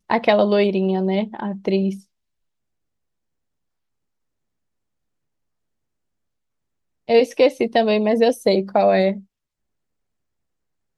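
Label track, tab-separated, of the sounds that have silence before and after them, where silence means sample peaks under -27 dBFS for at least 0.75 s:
7.090000	9.160000	sound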